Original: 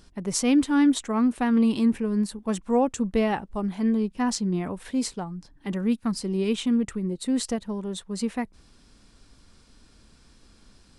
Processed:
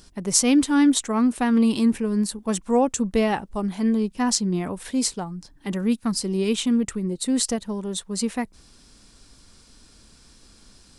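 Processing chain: tone controls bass -1 dB, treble +7 dB; trim +2.5 dB

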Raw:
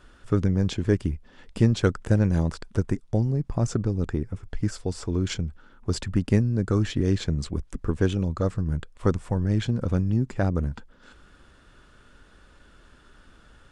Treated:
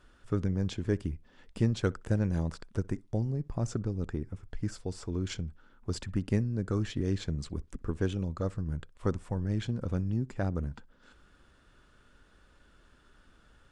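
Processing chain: filtered feedback delay 62 ms, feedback 18%, low-pass 2.1 kHz, level -24 dB; trim -7.5 dB

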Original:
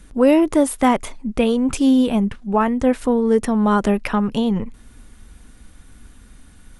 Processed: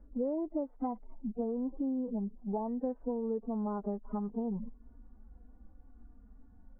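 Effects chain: harmonic-percussive separation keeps harmonic; compression 6:1, threshold -23 dBFS, peak gain reduction 13 dB; four-pole ladder low-pass 1 kHz, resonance 30%; trim -3 dB

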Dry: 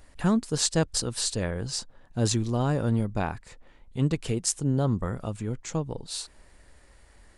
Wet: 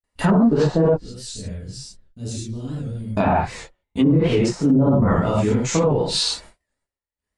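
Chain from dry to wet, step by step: coarse spectral quantiser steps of 15 dB; bass shelf 90 Hz -9.5 dB; gate -52 dBFS, range -59 dB; 0.93–3.17 s: amplifier tone stack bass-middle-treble 10-0-1; gated-style reverb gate 150 ms flat, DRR -7.5 dB; low-pass that closes with the level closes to 700 Hz, closed at -15 dBFS; loudness maximiser +17 dB; warped record 78 rpm, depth 100 cents; trim -8 dB

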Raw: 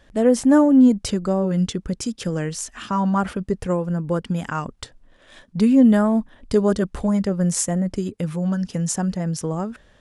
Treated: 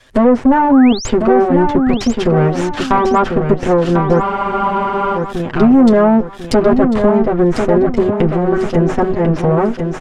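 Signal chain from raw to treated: comb filter that takes the minimum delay 7.9 ms; waveshaping leveller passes 2; compression 2:1, threshold -16 dBFS, peak gain reduction 5 dB; low-pass that closes with the level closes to 1.6 kHz, closed at -17 dBFS; painted sound rise, 0.70–1.09 s, 880–8100 Hz -33 dBFS; feedback delay 1046 ms, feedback 33%, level -6 dB; spectral freeze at 4.25 s, 0.92 s; tape noise reduction on one side only encoder only; trim +6 dB

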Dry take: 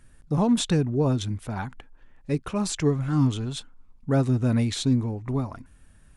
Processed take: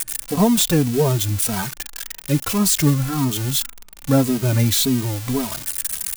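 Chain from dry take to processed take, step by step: zero-crossing glitches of -18.5 dBFS; endless flanger 2.8 ms -1.8 Hz; trim +8.5 dB

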